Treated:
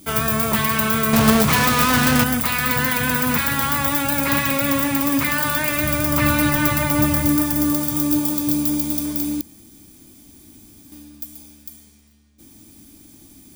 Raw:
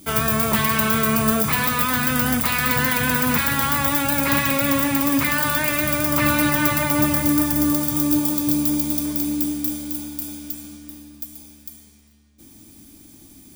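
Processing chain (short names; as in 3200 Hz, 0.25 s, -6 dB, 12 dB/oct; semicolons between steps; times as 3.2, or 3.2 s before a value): 1.13–2.24 half-waves squared off; 5.77–7.36 low shelf 93 Hz +10.5 dB; 9.41–10.92 room tone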